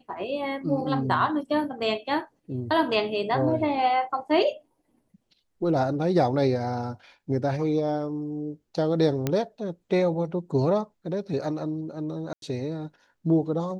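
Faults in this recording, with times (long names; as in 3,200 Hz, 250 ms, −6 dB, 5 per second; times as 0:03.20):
0:09.27: click −11 dBFS
0:12.33–0:12.42: drop-out 92 ms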